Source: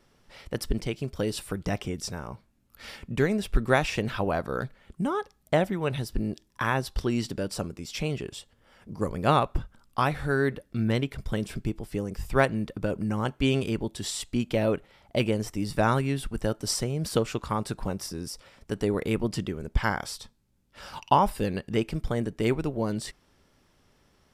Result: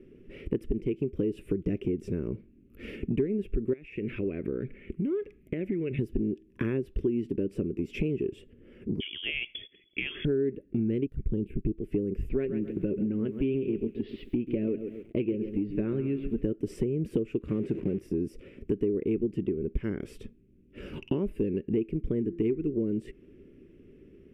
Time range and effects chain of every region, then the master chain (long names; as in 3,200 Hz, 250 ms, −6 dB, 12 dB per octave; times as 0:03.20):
0:03.73–0:05.99: parametric band 2,200 Hz +12.5 dB 0.67 octaves + downward compressor 4 to 1, threshold −38 dBFS
0:09.00–0:10.25: downward compressor 4 to 1, threshold −27 dBFS + voice inversion scrambler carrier 3,400 Hz
0:11.06–0:11.78: mu-law and A-law mismatch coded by A + low-shelf EQ 110 Hz +10.5 dB + phaser swept by the level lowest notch 320 Hz, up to 2,200 Hz, full sweep at −20 dBFS
0:12.29–0:16.43: elliptic low-pass filter 4,600 Hz + flanger 1.2 Hz, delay 3.8 ms, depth 2.8 ms, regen +57% + feedback echo at a low word length 135 ms, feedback 35%, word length 8 bits, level −11 dB
0:17.48–0:17.99: converter with a step at zero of −30.5 dBFS + high-pass filter 91 Hz + high-frequency loss of the air 66 metres
0:22.19–0:22.73: parametric band 570 Hz −7.5 dB 0.57 octaves + hum removal 171 Hz, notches 12
whole clip: drawn EQ curve 130 Hz 0 dB, 390 Hz +12 dB, 830 Hz −27 dB, 2,600 Hz −5 dB, 4,200 Hz −29 dB, 12,000 Hz −22 dB; downward compressor 6 to 1, threshold −34 dBFS; level +7.5 dB